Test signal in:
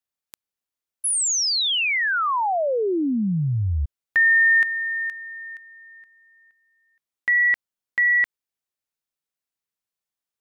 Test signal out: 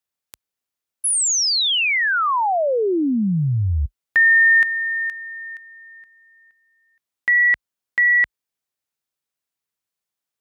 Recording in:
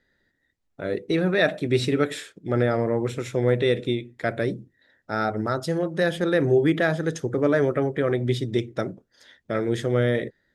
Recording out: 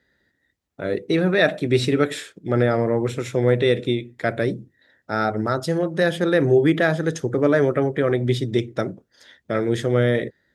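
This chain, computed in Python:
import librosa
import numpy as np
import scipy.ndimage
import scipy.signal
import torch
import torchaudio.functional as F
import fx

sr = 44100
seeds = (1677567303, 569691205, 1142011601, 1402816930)

y = scipy.signal.sosfilt(scipy.signal.butter(4, 44.0, 'highpass', fs=sr, output='sos'), x)
y = F.gain(torch.from_numpy(y), 3.0).numpy()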